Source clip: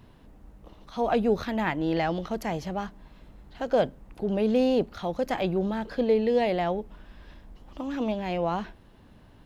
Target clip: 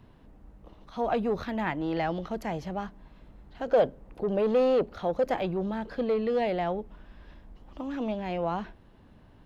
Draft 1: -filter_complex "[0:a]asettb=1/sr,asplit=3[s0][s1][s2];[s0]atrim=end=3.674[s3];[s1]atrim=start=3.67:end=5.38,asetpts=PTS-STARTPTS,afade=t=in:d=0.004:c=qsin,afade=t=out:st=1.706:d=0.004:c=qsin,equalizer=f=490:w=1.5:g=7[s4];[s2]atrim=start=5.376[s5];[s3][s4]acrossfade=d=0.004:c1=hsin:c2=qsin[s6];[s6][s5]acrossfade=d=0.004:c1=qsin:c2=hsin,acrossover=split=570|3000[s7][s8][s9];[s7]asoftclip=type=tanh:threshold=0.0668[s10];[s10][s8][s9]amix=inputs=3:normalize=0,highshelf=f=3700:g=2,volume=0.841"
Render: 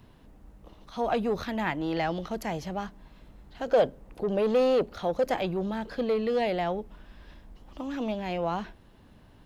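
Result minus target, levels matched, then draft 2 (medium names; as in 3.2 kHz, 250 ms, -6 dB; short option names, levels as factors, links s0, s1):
8 kHz band +7.0 dB
-filter_complex "[0:a]asettb=1/sr,asplit=3[s0][s1][s2];[s0]atrim=end=3.674[s3];[s1]atrim=start=3.67:end=5.38,asetpts=PTS-STARTPTS,afade=t=in:d=0.004:c=qsin,afade=t=out:st=1.706:d=0.004:c=qsin,equalizer=f=490:w=1.5:g=7[s4];[s2]atrim=start=5.376[s5];[s3][s4]acrossfade=d=0.004:c1=hsin:c2=qsin[s6];[s6][s5]acrossfade=d=0.004:c1=qsin:c2=hsin,acrossover=split=570|3000[s7][s8][s9];[s7]asoftclip=type=tanh:threshold=0.0668[s10];[s10][s8][s9]amix=inputs=3:normalize=0,highshelf=f=3700:g=-7.5,volume=0.841"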